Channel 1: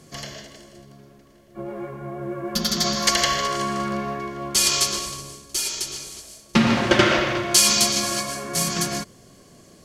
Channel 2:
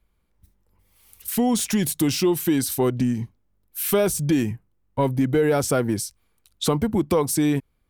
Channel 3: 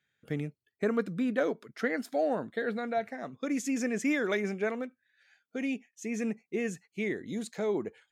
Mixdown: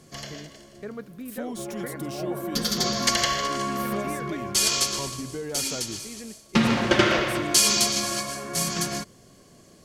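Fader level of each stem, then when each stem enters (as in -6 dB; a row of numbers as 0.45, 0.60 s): -3.0, -14.5, -8.5 dB; 0.00, 0.00, 0.00 s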